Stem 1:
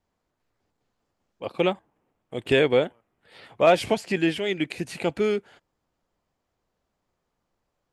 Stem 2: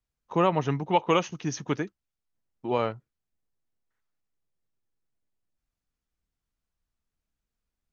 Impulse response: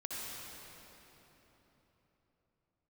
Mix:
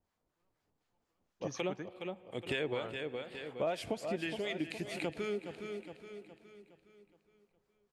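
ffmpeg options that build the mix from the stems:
-filter_complex "[0:a]acrossover=split=900[link_01][link_02];[link_01]aeval=exprs='val(0)*(1-0.7/2+0.7/2*cos(2*PI*4.1*n/s))':channel_layout=same[link_03];[link_02]aeval=exprs='val(0)*(1-0.7/2-0.7/2*cos(2*PI*4.1*n/s))':channel_layout=same[link_04];[link_03][link_04]amix=inputs=2:normalize=0,volume=-3dB,asplit=4[link_05][link_06][link_07][link_08];[link_06]volume=-21.5dB[link_09];[link_07]volume=-11.5dB[link_10];[1:a]volume=-8.5dB[link_11];[link_08]apad=whole_len=349634[link_12];[link_11][link_12]sidechaingate=range=-56dB:threshold=-60dB:ratio=16:detection=peak[link_13];[2:a]atrim=start_sample=2205[link_14];[link_09][link_14]afir=irnorm=-1:irlink=0[link_15];[link_10]aecho=0:1:415|830|1245|1660|2075|2490:1|0.45|0.202|0.0911|0.041|0.0185[link_16];[link_05][link_13][link_15][link_16]amix=inputs=4:normalize=0,acompressor=threshold=-35dB:ratio=3"

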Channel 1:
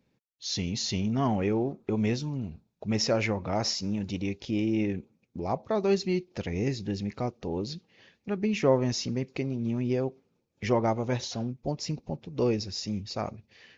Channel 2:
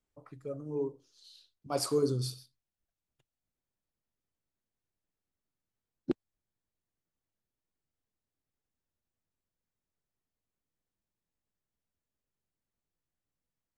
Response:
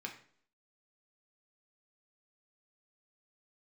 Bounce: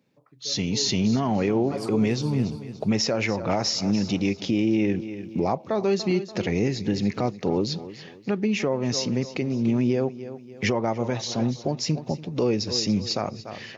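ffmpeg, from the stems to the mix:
-filter_complex "[0:a]highpass=110,volume=3dB,asplit=2[link_01][link_02];[link_02]volume=-16.5dB[link_03];[1:a]aemphasis=mode=reproduction:type=50fm,volume=-6.5dB,asplit=2[link_04][link_05];[link_05]volume=-10.5dB[link_06];[link_03][link_06]amix=inputs=2:normalize=0,aecho=0:1:289|578|867|1156|1445:1|0.34|0.116|0.0393|0.0134[link_07];[link_01][link_04][link_07]amix=inputs=3:normalize=0,dynaudnorm=framelen=170:gausssize=11:maxgain=11.5dB,highpass=frequency=78:width=0.5412,highpass=frequency=78:width=1.3066,alimiter=limit=-14dB:level=0:latency=1:release=386"

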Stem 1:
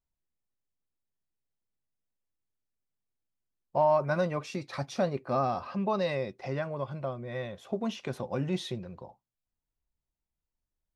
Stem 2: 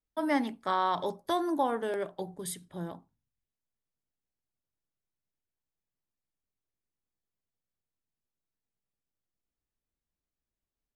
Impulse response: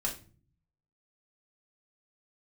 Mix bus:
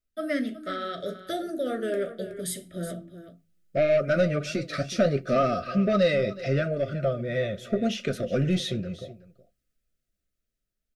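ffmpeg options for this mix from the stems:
-filter_complex "[0:a]asoftclip=type=tanh:threshold=-22dB,volume=1dB,asplit=3[link_01][link_02][link_03];[link_02]volume=-19.5dB[link_04];[link_03]volume=-16dB[link_05];[1:a]volume=1dB,asplit=3[link_06][link_07][link_08];[link_07]volume=-7dB[link_09];[link_08]volume=-10.5dB[link_10];[2:a]atrim=start_sample=2205[link_11];[link_04][link_09]amix=inputs=2:normalize=0[link_12];[link_12][link_11]afir=irnorm=-1:irlink=0[link_13];[link_05][link_10]amix=inputs=2:normalize=0,aecho=0:1:371:1[link_14];[link_01][link_06][link_13][link_14]amix=inputs=4:normalize=0,dynaudnorm=framelen=490:gausssize=11:maxgain=11dB,flanger=delay=2.9:depth=8.2:regen=-51:speed=0.73:shape=triangular,asuperstop=centerf=920:order=20:qfactor=1.9"

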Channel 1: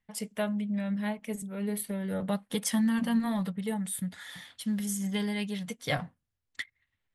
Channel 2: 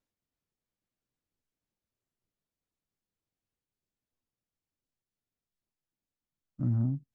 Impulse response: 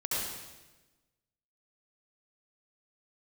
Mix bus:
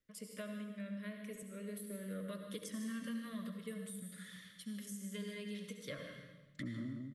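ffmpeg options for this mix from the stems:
-filter_complex "[0:a]volume=-12.5dB,asplit=3[link_01][link_02][link_03];[link_02]volume=-9dB[link_04];[link_03]volume=-14dB[link_05];[1:a]volume=-3dB,asplit=2[link_06][link_07];[link_07]volume=-5.5dB[link_08];[2:a]atrim=start_sample=2205[link_09];[link_04][link_09]afir=irnorm=-1:irlink=0[link_10];[link_05][link_08]amix=inputs=2:normalize=0,aecho=0:1:151|302|453|604:1|0.24|0.0576|0.0138[link_11];[link_01][link_06][link_10][link_11]amix=inputs=4:normalize=0,acrossover=split=220|1100[link_12][link_13][link_14];[link_12]acompressor=threshold=-56dB:ratio=4[link_15];[link_13]acompressor=threshold=-41dB:ratio=4[link_16];[link_14]acompressor=threshold=-49dB:ratio=4[link_17];[link_15][link_16][link_17]amix=inputs=3:normalize=0,asuperstop=centerf=810:order=8:qfactor=2"

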